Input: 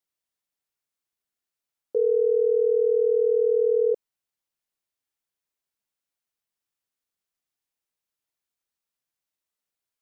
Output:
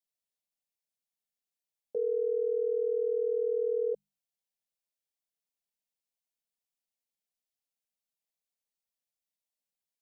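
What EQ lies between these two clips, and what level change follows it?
hum notches 50/100/150/200 Hz; dynamic bell 580 Hz, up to -4 dB, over -35 dBFS, Q 2.4; static phaser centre 340 Hz, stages 6; -4.5 dB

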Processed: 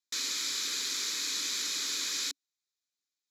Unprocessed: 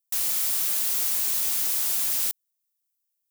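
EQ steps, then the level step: cabinet simulation 260–9200 Hz, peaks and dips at 280 Hz +9 dB, 400 Hz +4 dB, 2.7 kHz +8 dB, 3.9 kHz +7 dB, 7.2 kHz +7 dB; peaking EQ 2.5 kHz +11.5 dB 0.23 oct; static phaser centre 2.7 kHz, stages 6; 0.0 dB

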